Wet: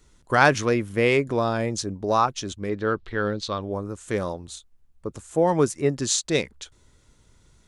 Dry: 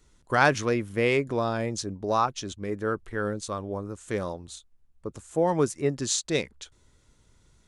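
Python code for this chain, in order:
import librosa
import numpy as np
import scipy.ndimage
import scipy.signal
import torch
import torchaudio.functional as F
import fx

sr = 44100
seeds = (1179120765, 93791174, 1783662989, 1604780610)

y = fx.lowpass_res(x, sr, hz=4000.0, q=2.9, at=(2.69, 3.62))
y = y * librosa.db_to_amplitude(3.5)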